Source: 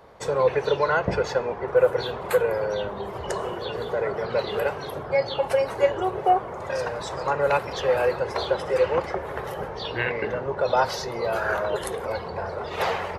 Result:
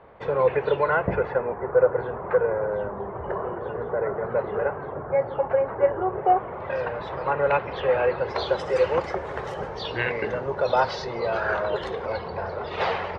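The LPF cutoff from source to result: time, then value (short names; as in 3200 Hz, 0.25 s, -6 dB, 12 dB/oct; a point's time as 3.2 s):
LPF 24 dB/oct
0.77 s 2900 Hz
1.74 s 1700 Hz
6.06 s 1700 Hz
6.57 s 3100 Hz
8.09 s 3100 Hz
8.61 s 7800 Hz
10.49 s 7800 Hz
10.9 s 4700 Hz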